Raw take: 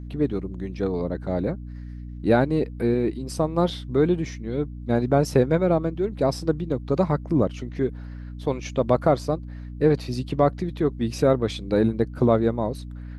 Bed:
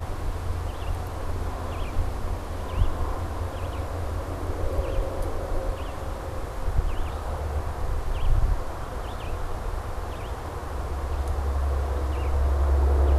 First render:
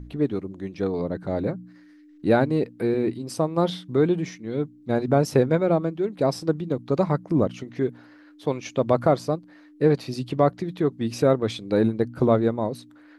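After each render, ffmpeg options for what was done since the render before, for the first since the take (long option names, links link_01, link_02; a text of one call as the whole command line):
ffmpeg -i in.wav -af "bandreject=frequency=60:width_type=h:width=4,bandreject=frequency=120:width_type=h:width=4,bandreject=frequency=180:width_type=h:width=4,bandreject=frequency=240:width_type=h:width=4" out.wav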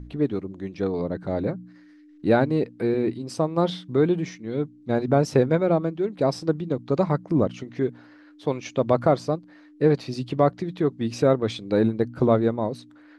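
ffmpeg -i in.wav -af "lowpass=7800" out.wav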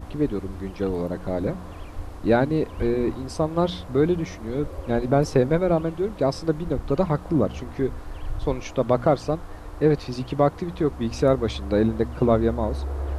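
ffmpeg -i in.wav -i bed.wav -filter_complex "[1:a]volume=-8dB[link_01];[0:a][link_01]amix=inputs=2:normalize=0" out.wav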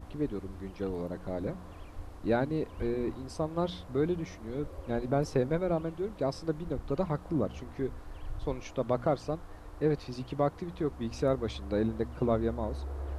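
ffmpeg -i in.wav -af "volume=-9dB" out.wav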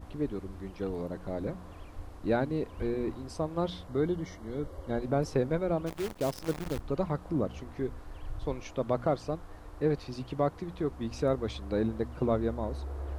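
ffmpeg -i in.wav -filter_complex "[0:a]asettb=1/sr,asplit=3[link_01][link_02][link_03];[link_01]atrim=end=3.874[link_04];[link_02]atrim=start=3.87:end=5.01,asetpts=PTS-STARTPTS,afade=type=in:duration=0.004:curve=qsin,afade=type=out:start_time=1.136:duration=0.004:curve=qsin,asuperstop=centerf=2500:order=20:qfactor=5.7[link_05];[link_03]atrim=start=5.006[link_06];[link_04][link_05]acrossfade=duration=0.004:curve1=hsin:curve2=qsin[link_07];[link_07][link_06]acrossfade=duration=0.004:curve1=qsin:curve2=hsin,asplit=3[link_08][link_09][link_10];[link_08]afade=type=out:start_time=5.86:duration=0.02[link_11];[link_09]acrusher=bits=7:dc=4:mix=0:aa=0.000001,afade=type=in:start_time=5.86:duration=0.02,afade=type=out:start_time=6.8:duration=0.02[link_12];[link_10]afade=type=in:start_time=6.8:duration=0.02[link_13];[link_11][link_12][link_13]amix=inputs=3:normalize=0" out.wav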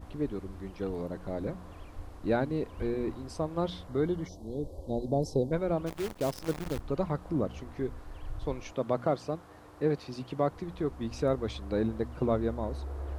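ffmpeg -i in.wav -filter_complex "[0:a]asplit=3[link_01][link_02][link_03];[link_01]afade=type=out:start_time=4.27:duration=0.02[link_04];[link_02]asuperstop=centerf=1800:order=8:qfactor=0.63,afade=type=in:start_time=4.27:duration=0.02,afade=type=out:start_time=5.51:duration=0.02[link_05];[link_03]afade=type=in:start_time=5.51:duration=0.02[link_06];[link_04][link_05][link_06]amix=inputs=3:normalize=0,asettb=1/sr,asplit=3[link_07][link_08][link_09];[link_07]atrim=end=8.724[link_10];[link_08]atrim=start=8.72:end=10.5,asetpts=PTS-STARTPTS,afade=type=in:duration=0.004:curve=qsin,afade=type=out:start_time=1.776:duration=0.004:curve=qsin,highpass=110[link_11];[link_09]atrim=start=10.496[link_12];[link_10][link_11]acrossfade=duration=0.004:curve1=hsin:curve2=qsin[link_13];[link_13][link_12]acrossfade=duration=0.004:curve1=qsin:curve2=hsin" out.wav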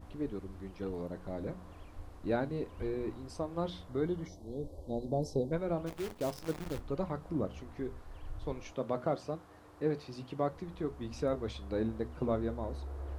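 ffmpeg -i in.wav -af "flanger=delay=9.6:depth=3.1:regen=-71:speed=0.29:shape=triangular" out.wav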